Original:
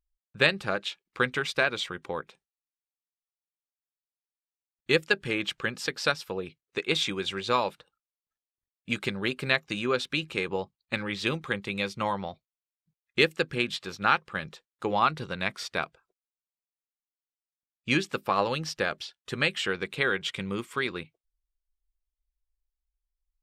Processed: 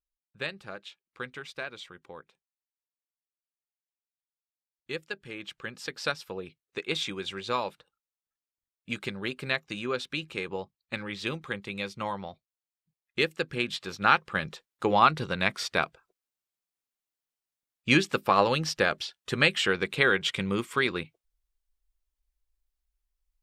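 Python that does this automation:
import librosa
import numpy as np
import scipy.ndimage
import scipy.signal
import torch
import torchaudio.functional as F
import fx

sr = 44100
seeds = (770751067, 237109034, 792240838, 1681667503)

y = fx.gain(x, sr, db=fx.line((5.27, -12.0), (6.05, -4.0), (13.27, -4.0), (14.36, 3.5)))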